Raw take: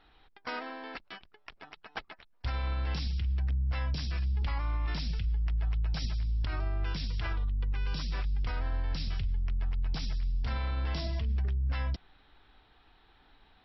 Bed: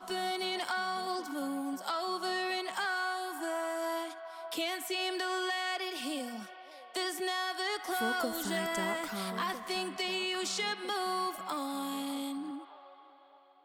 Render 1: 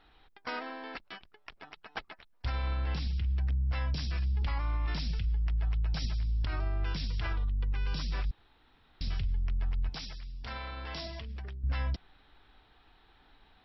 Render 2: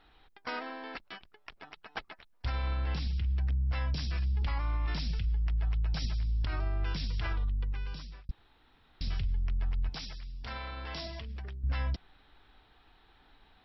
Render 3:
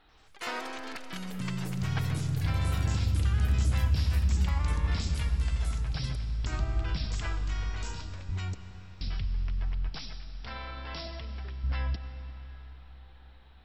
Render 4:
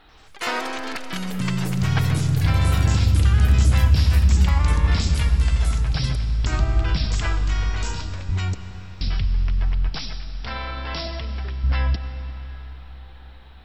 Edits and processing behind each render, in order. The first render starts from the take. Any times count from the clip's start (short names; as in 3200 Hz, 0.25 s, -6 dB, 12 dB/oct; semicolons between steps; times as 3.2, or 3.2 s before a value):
2.77–3.37 air absorption 91 m; 8.31–9.01 room tone; 9.89–11.64 low shelf 250 Hz -12 dB
7.51–8.29 fade out
echoes that change speed 88 ms, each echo +6 st, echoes 3; digital reverb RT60 4.7 s, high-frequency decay 0.75×, pre-delay 50 ms, DRR 9 dB
gain +10 dB